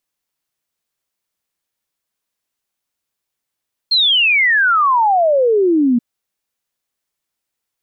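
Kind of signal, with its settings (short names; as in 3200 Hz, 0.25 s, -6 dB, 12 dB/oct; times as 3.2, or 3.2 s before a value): log sweep 4300 Hz -> 230 Hz 2.08 s -10 dBFS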